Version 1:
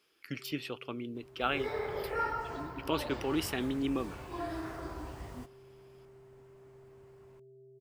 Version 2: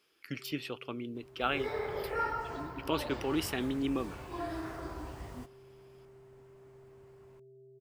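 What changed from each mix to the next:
no change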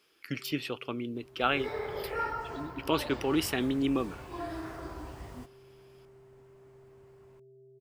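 speech +4.0 dB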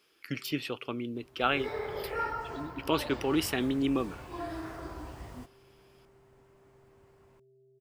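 first sound -6.5 dB

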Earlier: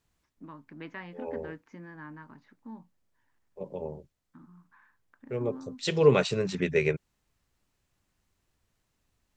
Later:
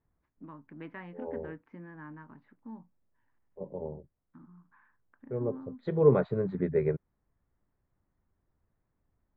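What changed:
second voice: add boxcar filter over 16 samples; master: add distance through air 460 m

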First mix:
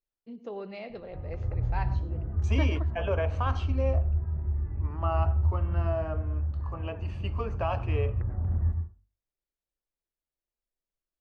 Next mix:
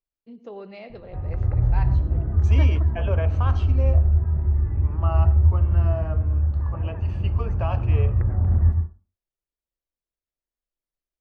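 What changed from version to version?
background +8.5 dB; master: remove hum notches 50/100 Hz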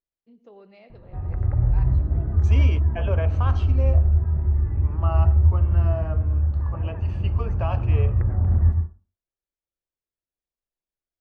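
first voice -10.0 dB

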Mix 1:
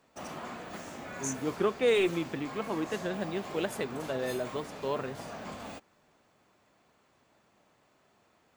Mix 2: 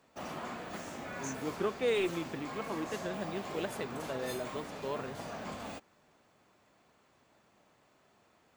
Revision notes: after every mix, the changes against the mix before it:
first voice: add distance through air 110 m; second voice -5.0 dB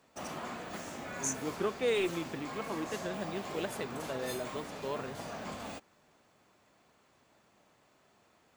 first voice: remove distance through air 110 m; master: add peaking EQ 10 kHz +2.5 dB 2.4 oct

